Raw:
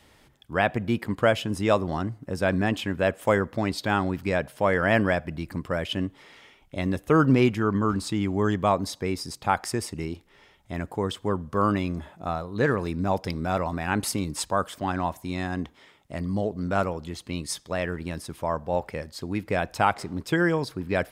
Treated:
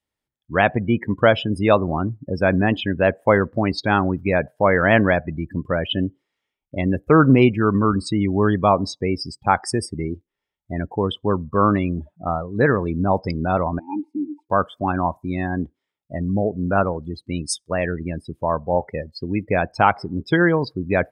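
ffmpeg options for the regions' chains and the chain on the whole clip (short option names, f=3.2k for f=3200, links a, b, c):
-filter_complex "[0:a]asettb=1/sr,asplit=3[a][b][c];[a]atrim=end=13.794[d];[b]atrim=start=13.79:end=14.5,asetpts=PTS-STARTPTS,afade=t=in:d=0.004:c=qsin,afade=t=out:st=0.706:d=0.004:c=qsin,asplit=3[e][f][g];[e]bandpass=f=300:t=q:w=8,volume=0dB[h];[f]bandpass=f=870:t=q:w=8,volume=-6dB[i];[g]bandpass=f=2.24k:t=q:w=8,volume=-9dB[j];[h][i][j]amix=inputs=3:normalize=0,aecho=1:1:3.3:0.46,atrim=end_sample=31311[k];[c]atrim=start=14.496[l];[d][k]acrossfade=d=0.004:c1=hsin:c2=qsin[m];[m][l]acrossfade=d=0.004:c1=qsin:c2=hsin,afftdn=nr=35:nf=-33,highshelf=f=7.2k:g=6.5,volume=6dB"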